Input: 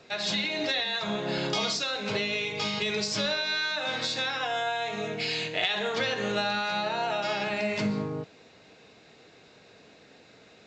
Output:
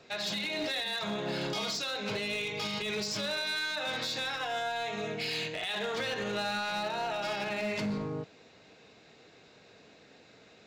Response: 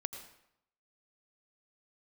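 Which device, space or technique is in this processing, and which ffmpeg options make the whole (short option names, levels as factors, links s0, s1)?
limiter into clipper: -af "alimiter=limit=0.0891:level=0:latency=1:release=53,asoftclip=type=hard:threshold=0.0501,volume=0.75"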